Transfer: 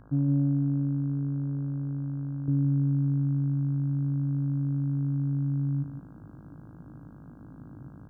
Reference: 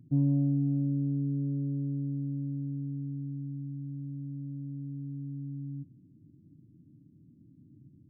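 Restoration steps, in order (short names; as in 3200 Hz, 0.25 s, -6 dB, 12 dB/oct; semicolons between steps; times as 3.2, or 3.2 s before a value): de-hum 52.9 Hz, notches 31; denoiser 11 dB, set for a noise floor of -47 dBFS; inverse comb 0.163 s -11 dB; gain correction -10 dB, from 2.48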